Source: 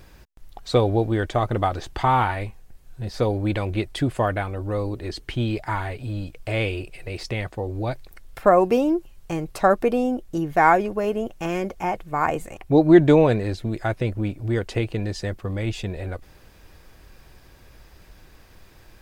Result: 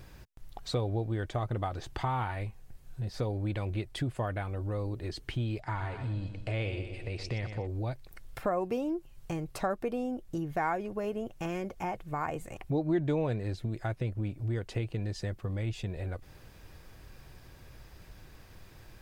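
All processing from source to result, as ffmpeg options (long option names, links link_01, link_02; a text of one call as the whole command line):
ffmpeg -i in.wav -filter_complex "[0:a]asettb=1/sr,asplit=3[link_01][link_02][link_03];[link_01]atrim=end=5.604[link_04];[link_02]atrim=start=5.6:end=7.67,asetpts=PTS-STARTPTS,afade=type=in:duration=0.004:curve=qsin,afade=type=out:start_time=2.066:duration=0.004:curve=qsin,lowpass=7100,aecho=1:1:121|242|363|484|605:0.316|0.139|0.0612|0.0269|0.0119,atrim=end_sample=91287[link_05];[link_03]atrim=start=7.666[link_06];[link_04][link_05]acrossfade=duration=0.004:curve1=hsin:curve2=qsin[link_07];[link_07][link_06]acrossfade=duration=0.004:curve1=qsin:curve2=hsin,equalizer=frequency=120:width=1.5:gain=6,acompressor=threshold=-33dB:ratio=2,volume=-3.5dB" out.wav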